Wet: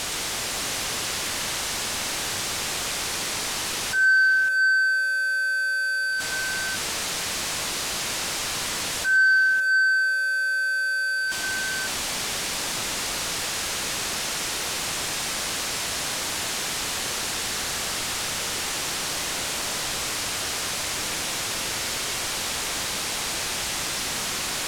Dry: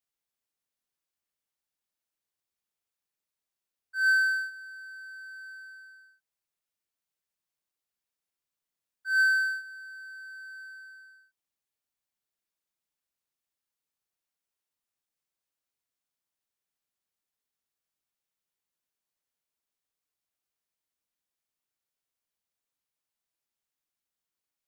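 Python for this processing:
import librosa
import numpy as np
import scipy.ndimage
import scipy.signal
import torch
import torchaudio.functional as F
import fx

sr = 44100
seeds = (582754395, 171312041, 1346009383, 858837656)

p1 = x + 0.5 * 10.0 ** (-34.5 / 20.0) * np.sign(x)
p2 = scipy.signal.sosfilt(scipy.signal.butter(2, 8100.0, 'lowpass', fs=sr, output='sos'), p1)
p3 = p2 + fx.echo_multitap(p2, sr, ms=(118, 554), db=(-4.0, -4.5), dry=0)
p4 = fx.env_flatten(p3, sr, amount_pct=50)
y = p4 * librosa.db_to_amplitude(4.0)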